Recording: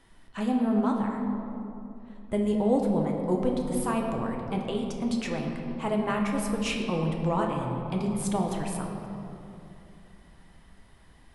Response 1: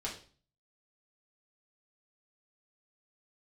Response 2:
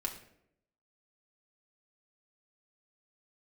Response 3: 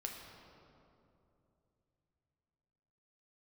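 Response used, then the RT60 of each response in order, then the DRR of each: 3; 0.40 s, 0.75 s, 2.8 s; -4.5 dB, 0.5 dB, 0.5 dB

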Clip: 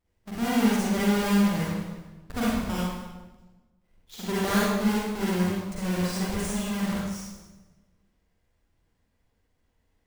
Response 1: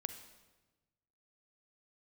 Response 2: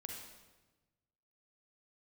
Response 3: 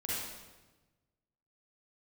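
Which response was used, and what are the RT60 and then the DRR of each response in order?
3; 1.2 s, 1.2 s, 1.2 s; 9.0 dB, 0.0 dB, -8.0 dB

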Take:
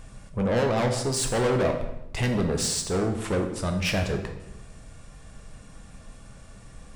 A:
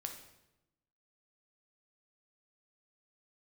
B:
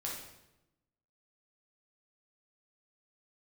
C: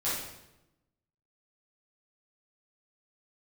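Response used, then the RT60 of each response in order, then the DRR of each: A; 0.95 s, 0.90 s, 0.90 s; 3.5 dB, -4.0 dB, -11.0 dB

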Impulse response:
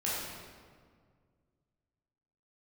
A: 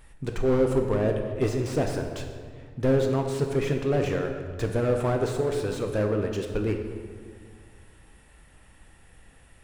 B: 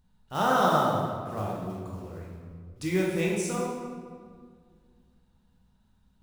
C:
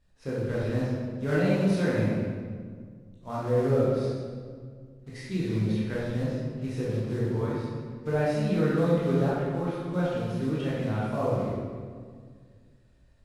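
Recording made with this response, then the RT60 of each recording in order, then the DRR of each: C; 1.9 s, 1.9 s, 1.9 s; 3.5 dB, -4.0 dB, -8.0 dB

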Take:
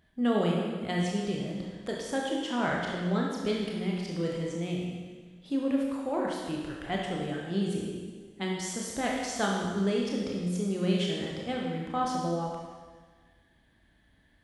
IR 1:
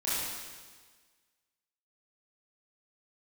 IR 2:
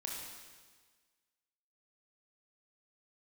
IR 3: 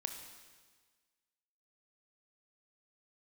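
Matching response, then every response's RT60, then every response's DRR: 2; 1.5 s, 1.5 s, 1.5 s; -11.0 dB, -2.5 dB, 5.0 dB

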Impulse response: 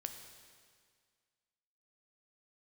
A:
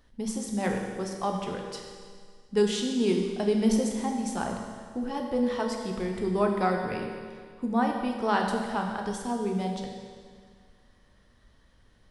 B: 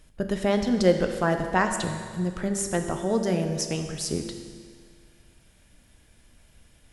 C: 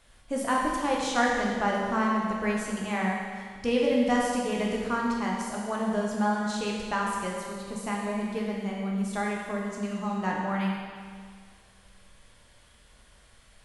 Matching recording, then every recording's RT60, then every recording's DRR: B; 1.9 s, 1.9 s, 1.9 s; 1.5 dB, 5.5 dB, -3.0 dB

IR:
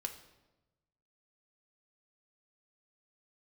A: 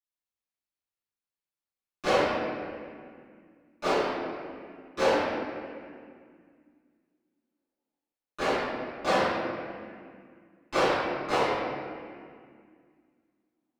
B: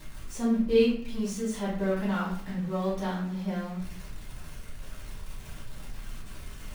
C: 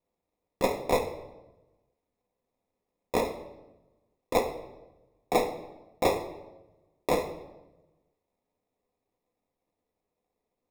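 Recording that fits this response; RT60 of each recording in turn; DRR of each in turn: C; 2.1 s, 0.50 s, 1.1 s; -17.0 dB, -7.5 dB, 4.0 dB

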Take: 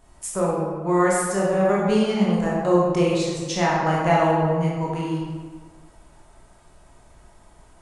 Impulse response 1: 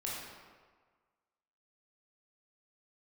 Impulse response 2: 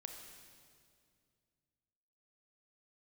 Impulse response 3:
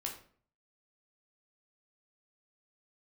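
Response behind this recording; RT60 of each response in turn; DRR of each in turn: 1; 1.5 s, 2.2 s, 0.50 s; -5.5 dB, 3.5 dB, -0.5 dB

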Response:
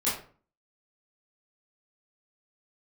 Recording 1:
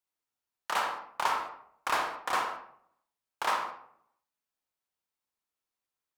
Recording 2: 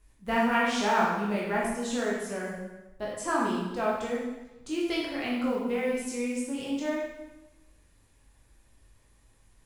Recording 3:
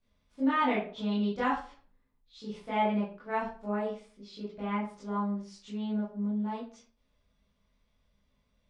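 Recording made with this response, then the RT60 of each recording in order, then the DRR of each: 3; 0.65 s, 1.0 s, 0.45 s; 2.0 dB, -5.0 dB, -10.5 dB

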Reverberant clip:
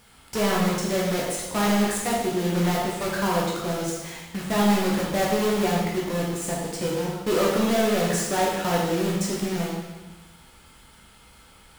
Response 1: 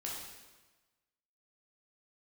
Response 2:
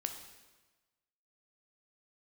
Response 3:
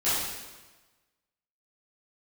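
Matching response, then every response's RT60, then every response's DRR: 1; 1.2 s, 1.2 s, 1.2 s; -4.5 dB, 5.0 dB, -14.0 dB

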